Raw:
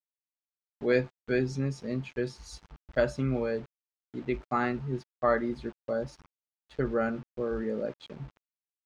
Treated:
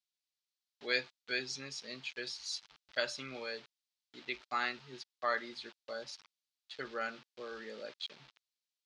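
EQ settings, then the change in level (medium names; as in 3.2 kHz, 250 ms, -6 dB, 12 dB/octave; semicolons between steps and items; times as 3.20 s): band-pass filter 4.2 kHz, Q 1.8; +10.5 dB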